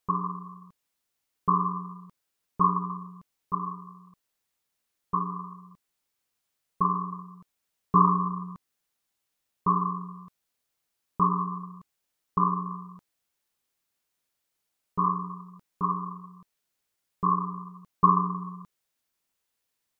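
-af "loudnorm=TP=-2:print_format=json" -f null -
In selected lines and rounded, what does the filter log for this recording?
"input_i" : "-27.8",
"input_tp" : "-6.5",
"input_lra" : "5.9",
"input_thresh" : "-39.6",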